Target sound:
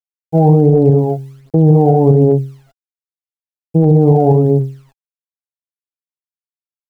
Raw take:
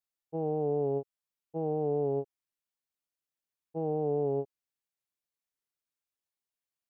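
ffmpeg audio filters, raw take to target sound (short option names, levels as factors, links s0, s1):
-filter_complex "[0:a]lowpass=1100,equalizer=f=160:w=0.45:g=12.5,bandreject=f=67.63:t=h:w=4,bandreject=f=135.26:t=h:w=4,bandreject=f=202.89:t=h:w=4,bandreject=f=270.52:t=h:w=4,bandreject=f=338.15:t=h:w=4,bandreject=f=405.78:t=h:w=4,bandreject=f=473.41:t=h:w=4,bandreject=f=541.04:t=h:w=4,bandreject=f=608.67:t=h:w=4,bandreject=f=676.3:t=h:w=4,bandreject=f=743.93:t=h:w=4,bandreject=f=811.56:t=h:w=4,bandreject=f=879.19:t=h:w=4,bandreject=f=946.82:t=h:w=4,bandreject=f=1014.45:t=h:w=4,bandreject=f=1082.08:t=h:w=4,bandreject=f=1149.71:t=h:w=4,bandreject=f=1217.34:t=h:w=4,bandreject=f=1284.97:t=h:w=4,asplit=2[s0][s1];[s1]aecho=0:1:141:0.501[s2];[s0][s2]amix=inputs=2:normalize=0,acrusher=bits=11:mix=0:aa=0.000001,aphaser=in_gain=1:out_gain=1:delay=1.5:decay=0.7:speed=1.3:type=triangular,alimiter=level_in=7.94:limit=0.891:release=50:level=0:latency=1,volume=0.891"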